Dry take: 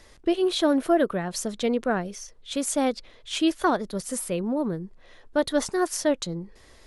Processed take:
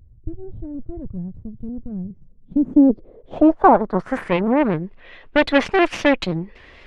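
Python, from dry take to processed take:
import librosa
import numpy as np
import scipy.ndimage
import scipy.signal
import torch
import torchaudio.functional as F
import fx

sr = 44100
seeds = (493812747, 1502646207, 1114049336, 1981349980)

y = fx.cheby_harmonics(x, sr, harmonics=(8,), levels_db=(-17,), full_scale_db=-10.0)
y = fx.filter_sweep_lowpass(y, sr, from_hz=110.0, to_hz=2600.0, start_s=1.98, end_s=4.53, q=2.8)
y = fx.vibrato_shape(y, sr, shape='saw_up', rate_hz=3.8, depth_cents=100.0)
y = F.gain(torch.from_numpy(y), 6.5).numpy()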